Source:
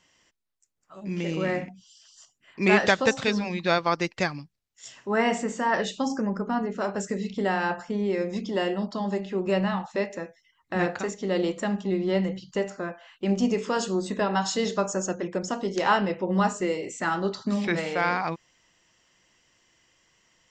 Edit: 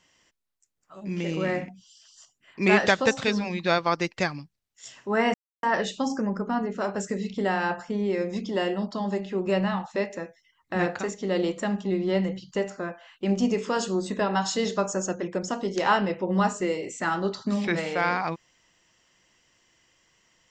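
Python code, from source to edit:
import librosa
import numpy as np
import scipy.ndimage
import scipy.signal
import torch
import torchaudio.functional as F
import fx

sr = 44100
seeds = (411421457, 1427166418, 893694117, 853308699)

y = fx.edit(x, sr, fx.silence(start_s=5.34, length_s=0.29), tone=tone)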